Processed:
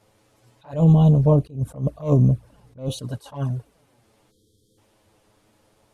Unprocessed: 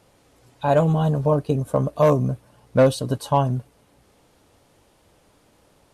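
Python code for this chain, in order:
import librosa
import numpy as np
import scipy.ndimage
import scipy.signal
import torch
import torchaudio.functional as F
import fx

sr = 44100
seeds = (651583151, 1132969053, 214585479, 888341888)

y = fx.low_shelf(x, sr, hz=200.0, db=11.0, at=(0.73, 2.89))
y = fx.spec_erase(y, sr, start_s=4.3, length_s=0.48, low_hz=530.0, high_hz=3100.0)
y = fx.env_flanger(y, sr, rest_ms=9.6, full_db=-12.0)
y = fx.attack_slew(y, sr, db_per_s=190.0)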